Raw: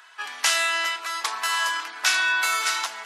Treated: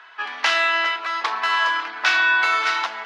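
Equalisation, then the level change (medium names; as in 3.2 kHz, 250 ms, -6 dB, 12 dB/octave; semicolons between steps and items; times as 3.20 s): distance through air 260 m; bass shelf 220 Hz +3 dB; +7.0 dB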